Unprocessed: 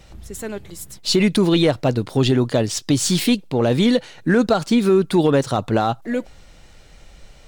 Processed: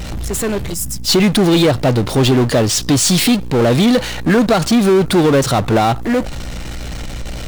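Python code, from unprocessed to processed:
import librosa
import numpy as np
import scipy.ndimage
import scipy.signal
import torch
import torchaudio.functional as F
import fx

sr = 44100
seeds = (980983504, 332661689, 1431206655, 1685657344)

y = fx.add_hum(x, sr, base_hz=60, snr_db=27)
y = fx.power_curve(y, sr, exponent=0.5)
y = fx.spec_box(y, sr, start_s=0.74, length_s=0.34, low_hz=290.0, high_hz=4700.0, gain_db=-11)
y = F.gain(torch.from_numpy(y), 1.0).numpy()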